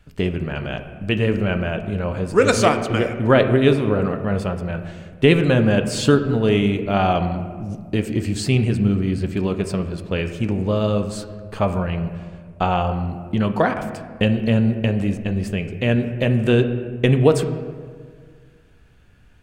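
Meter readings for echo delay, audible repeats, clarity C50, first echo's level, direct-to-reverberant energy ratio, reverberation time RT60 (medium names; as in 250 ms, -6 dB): no echo, no echo, 9.5 dB, no echo, 7.0 dB, 1.8 s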